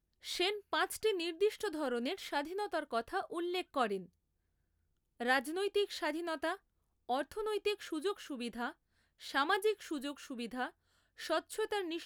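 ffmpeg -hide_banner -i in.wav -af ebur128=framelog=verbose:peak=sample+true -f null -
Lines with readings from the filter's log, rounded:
Integrated loudness:
  I:         -36.7 LUFS
  Threshold: -47.0 LUFS
Loudness range:
  LRA:         2.7 LU
  Threshold: -57.6 LUFS
  LRA low:   -39.1 LUFS
  LRA high:  -36.4 LUFS
Sample peak:
  Peak:      -16.4 dBFS
True peak:
  Peak:      -16.4 dBFS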